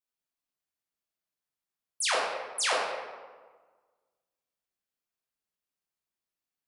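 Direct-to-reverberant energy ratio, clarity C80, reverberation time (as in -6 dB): -5.0 dB, 2.5 dB, 1.5 s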